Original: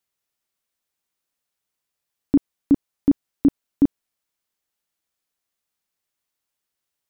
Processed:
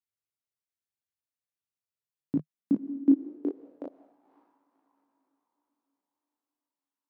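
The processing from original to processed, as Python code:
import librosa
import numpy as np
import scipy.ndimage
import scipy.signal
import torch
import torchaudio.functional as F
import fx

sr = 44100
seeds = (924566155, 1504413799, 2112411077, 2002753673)

y = fx.level_steps(x, sr, step_db=24)
y = fx.echo_diffused(y, sr, ms=540, feedback_pct=43, wet_db=-13.0)
y = fx.filter_sweep_highpass(y, sr, from_hz=98.0, to_hz=950.0, start_s=1.9, end_s=4.42, q=4.2)
y = fx.chorus_voices(y, sr, voices=2, hz=0.39, base_ms=21, depth_ms=2.6, mix_pct=35)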